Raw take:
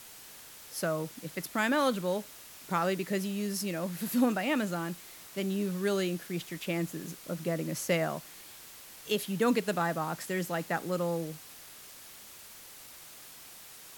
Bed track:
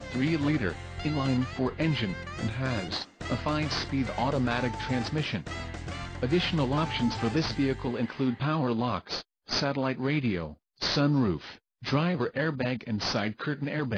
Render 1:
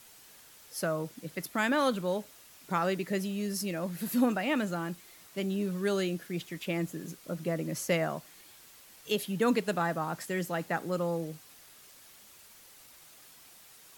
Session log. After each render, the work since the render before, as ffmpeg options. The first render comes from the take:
-af "afftdn=nr=6:nf=-50"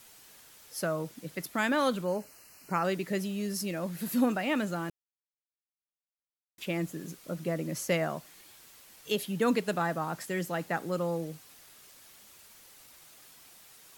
-filter_complex "[0:a]asplit=3[a][b][c];[a]afade=t=out:st=2.04:d=0.02[d];[b]asuperstop=centerf=3500:order=20:qfactor=3.5,afade=t=in:st=2.04:d=0.02,afade=t=out:st=2.83:d=0.02[e];[c]afade=t=in:st=2.83:d=0.02[f];[d][e][f]amix=inputs=3:normalize=0,asplit=3[g][h][i];[g]atrim=end=4.9,asetpts=PTS-STARTPTS,afade=t=out:st=4.896:d=0.004:c=hsin[j];[h]atrim=start=4.9:end=6.58,asetpts=PTS-STARTPTS,volume=0[k];[i]atrim=start=6.58,asetpts=PTS-STARTPTS,afade=t=in:d=0.004:c=hsin[l];[j][k][l]concat=n=3:v=0:a=1"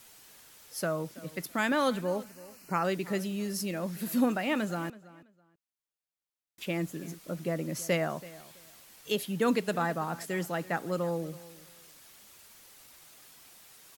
-filter_complex "[0:a]asplit=2[a][b];[b]adelay=329,lowpass=f=4.6k:p=1,volume=-19dB,asplit=2[c][d];[d]adelay=329,lowpass=f=4.6k:p=1,volume=0.22[e];[a][c][e]amix=inputs=3:normalize=0"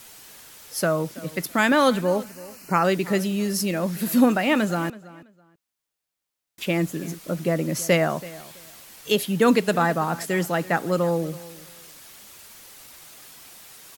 -af "volume=9dB"

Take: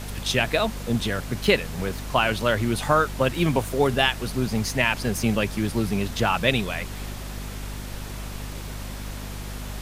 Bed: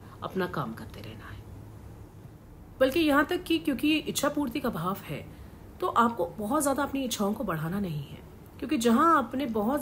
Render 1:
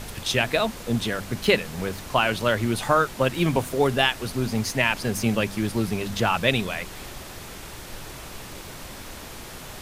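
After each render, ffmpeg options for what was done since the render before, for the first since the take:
-af "bandreject=f=50:t=h:w=4,bandreject=f=100:t=h:w=4,bandreject=f=150:t=h:w=4,bandreject=f=200:t=h:w=4,bandreject=f=250:t=h:w=4"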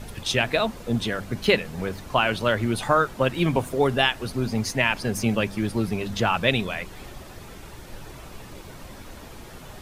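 -af "afftdn=nr=8:nf=-40"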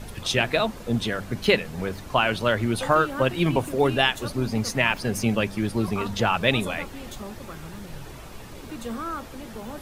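-filter_complex "[1:a]volume=-10.5dB[a];[0:a][a]amix=inputs=2:normalize=0"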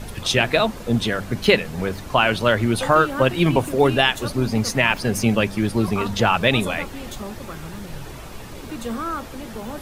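-af "volume=4.5dB,alimiter=limit=-3dB:level=0:latency=1"

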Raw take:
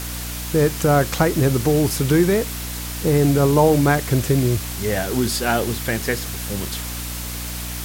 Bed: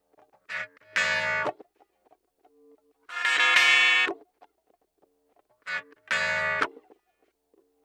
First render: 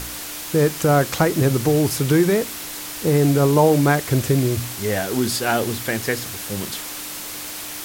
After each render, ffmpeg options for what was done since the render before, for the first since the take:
-af "bandreject=f=60:t=h:w=4,bandreject=f=120:t=h:w=4,bandreject=f=180:t=h:w=4,bandreject=f=240:t=h:w=4"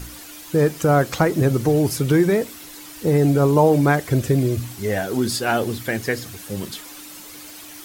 -af "afftdn=nr=10:nf=-32"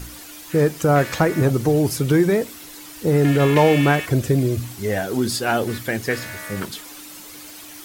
-filter_complex "[1:a]volume=-8.5dB[a];[0:a][a]amix=inputs=2:normalize=0"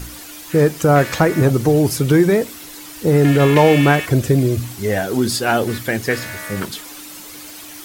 -af "volume=3.5dB,alimiter=limit=-1dB:level=0:latency=1"

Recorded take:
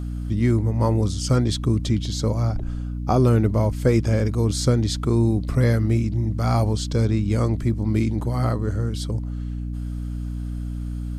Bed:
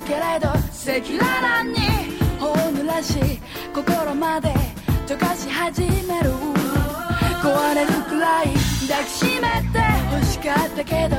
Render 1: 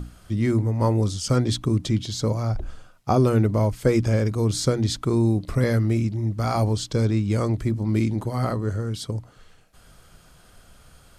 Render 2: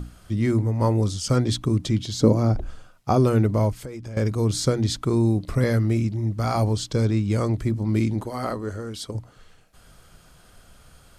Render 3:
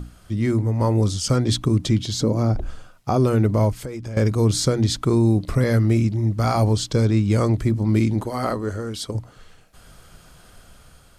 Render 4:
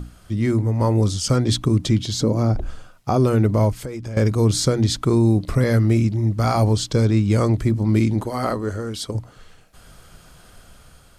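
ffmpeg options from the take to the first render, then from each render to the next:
-af "bandreject=f=60:t=h:w=6,bandreject=f=120:t=h:w=6,bandreject=f=180:t=h:w=6,bandreject=f=240:t=h:w=6,bandreject=f=300:t=h:w=6"
-filter_complex "[0:a]asettb=1/sr,asplit=3[a][b][c];[a]atrim=end=2.204[d];[b]atrim=start=2.2:end=2.6,asetpts=PTS-STARTPTS,afade=t=in:d=0.004:c=qsin,afade=t=out:st=0.396:d=0.004:c=qsin,equalizer=f=290:t=o:w=1.7:g=12[e];[c]atrim=start=2.596[f];[d][e]acrossfade=d=0.004:c1=hsin:c2=qsin[g];[g][f]acrossfade=d=0.004:c1=qsin:c2=hsin,asettb=1/sr,asplit=3[h][i][j];[h]atrim=end=3.724[k];[i]atrim=start=3.72:end=4.17,asetpts=PTS-STARTPTS,afade=t=in:d=0.004:c=qsin,afade=t=out:st=0.446:d=0.004:c=qsin,acompressor=threshold=-33dB:ratio=6:attack=3.2:release=140:knee=1:detection=peak[l];[j]atrim=start=4.166[m];[k][l]acrossfade=d=0.004:c1=hsin:c2=qsin[n];[n][m]acrossfade=d=0.004:c1=qsin:c2=hsin,asettb=1/sr,asplit=3[o][p][q];[o]atrim=end=8.234[r];[p]atrim=start=8.23:end=9.15,asetpts=PTS-STARTPTS,afade=t=in:d=0.004:c=qsin,afade=t=out:st=0.916:d=0.004:c=qsin,equalizer=f=130:w=1.5:g=-12[s];[q]atrim=start=9.146[t];[r][s]acrossfade=d=0.004:c1=hsin:c2=qsin[u];[u][t]acrossfade=d=0.004:c1=qsin:c2=hsin"
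-af "alimiter=limit=-13.5dB:level=0:latency=1:release=148,dynaudnorm=f=290:g=5:m=4dB"
-af "volume=1dB"

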